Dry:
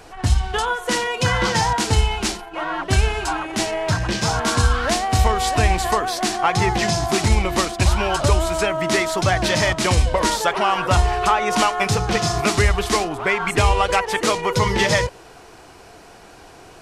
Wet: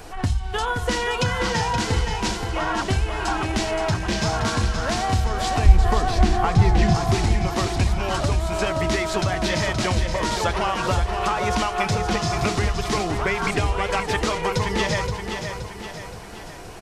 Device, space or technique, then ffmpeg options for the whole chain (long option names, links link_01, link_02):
ASMR close-microphone chain: -filter_complex "[0:a]lowshelf=frequency=140:gain=7.5,bandreject=frequency=60:width_type=h:width=6,bandreject=frequency=120:width_type=h:width=6,acompressor=threshold=-22dB:ratio=5,highshelf=frequency=9900:gain=6.5,asettb=1/sr,asplit=3[link_01][link_02][link_03];[link_01]atrim=end=5.664[link_04];[link_02]atrim=start=5.66:end=6.95,asetpts=PTS-STARTPTS,afade=type=in:duration=0.004:curve=qsin,afade=type=out:start_time=1.286:duration=0.004:curve=qsin,aemphasis=mode=reproduction:type=bsi[link_05];[link_03]atrim=start=6.946[link_06];[link_04][link_05]acrossfade=duration=0.004:curve1=hsin:curve2=qsin[link_07];[link_07][link_06]acrossfade=duration=0.004:curve1=qsin:curve2=hsin,acrossover=split=6900[link_08][link_09];[link_09]acompressor=threshold=-48dB:ratio=4:attack=1:release=60[link_10];[link_08][link_10]amix=inputs=2:normalize=0,aecho=1:1:523|1046|1569|2092|2615|3138:0.447|0.219|0.107|0.0526|0.0258|0.0126,volume=1.5dB"